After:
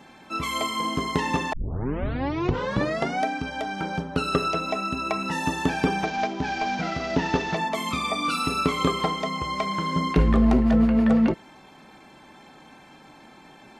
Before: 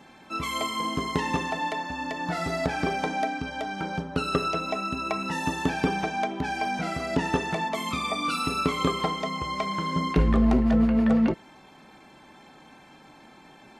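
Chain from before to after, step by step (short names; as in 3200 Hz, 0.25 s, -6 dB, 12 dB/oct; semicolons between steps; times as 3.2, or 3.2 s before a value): 1.53 tape start 1.72 s; 6.05–7.57 CVSD 32 kbps; gain +2 dB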